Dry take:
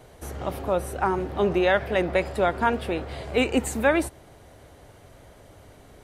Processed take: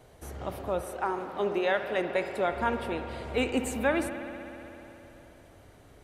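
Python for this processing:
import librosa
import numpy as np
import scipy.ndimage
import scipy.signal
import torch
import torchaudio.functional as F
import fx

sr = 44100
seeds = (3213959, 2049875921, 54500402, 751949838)

y = fx.highpass(x, sr, hz=fx.line((0.81, 360.0), (2.51, 150.0)), slope=12, at=(0.81, 2.51), fade=0.02)
y = fx.rev_spring(y, sr, rt60_s=3.4, pass_ms=(59,), chirp_ms=55, drr_db=7.0)
y = y * librosa.db_to_amplitude(-6.0)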